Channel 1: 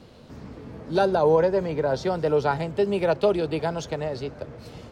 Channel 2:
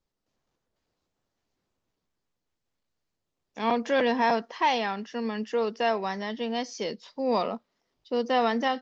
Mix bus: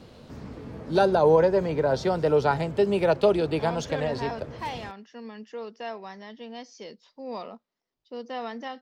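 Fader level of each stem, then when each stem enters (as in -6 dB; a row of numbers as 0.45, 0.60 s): +0.5, -10.0 dB; 0.00, 0.00 s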